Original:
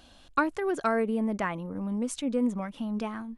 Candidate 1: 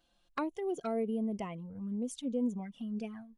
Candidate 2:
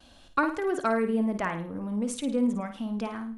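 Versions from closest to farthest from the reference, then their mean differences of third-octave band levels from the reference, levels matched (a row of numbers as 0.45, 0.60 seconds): 2, 1; 2.5, 5.5 decibels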